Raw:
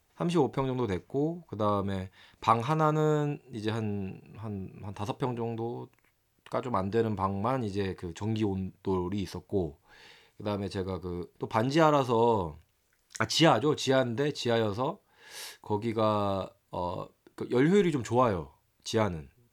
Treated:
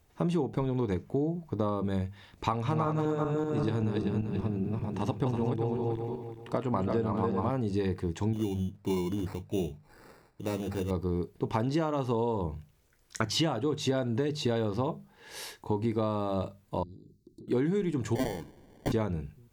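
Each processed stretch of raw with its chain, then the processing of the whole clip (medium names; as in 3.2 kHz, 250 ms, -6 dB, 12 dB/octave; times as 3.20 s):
2.47–7.50 s: backward echo that repeats 194 ms, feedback 49%, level -2.5 dB + treble shelf 9.5 kHz -6 dB
8.33–10.91 s: flange 1.5 Hz, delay 4.8 ms, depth 4.5 ms, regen -57% + sample-rate reducer 3.2 kHz
16.83–17.48 s: Chebyshev band-stop 390–4000 Hz, order 5 + treble shelf 5 kHz -11.5 dB + compression 8:1, threshold -52 dBFS
18.15–18.92 s: tilt EQ +4 dB/octave + touch-sensitive phaser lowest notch 200 Hz, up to 1.8 kHz, full sweep at -23 dBFS + sample-rate reducer 1.3 kHz
whole clip: bass shelf 480 Hz +9 dB; hum notches 50/100/150/200 Hz; compression 12:1, threshold -25 dBFS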